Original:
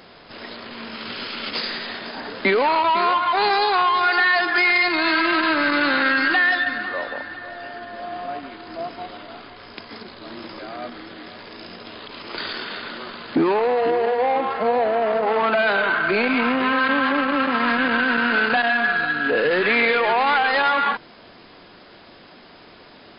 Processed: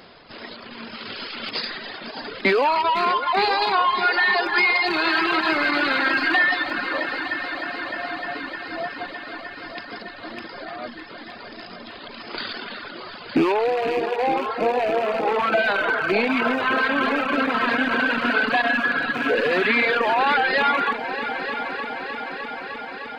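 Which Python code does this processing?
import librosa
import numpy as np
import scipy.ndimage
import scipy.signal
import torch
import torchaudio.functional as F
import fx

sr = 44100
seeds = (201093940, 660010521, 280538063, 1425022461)

y = fx.rattle_buzz(x, sr, strikes_db=-36.0, level_db=-19.0)
y = fx.echo_heads(y, sr, ms=305, heads='all three', feedback_pct=74, wet_db=-14.5)
y = fx.dereverb_blind(y, sr, rt60_s=1.3)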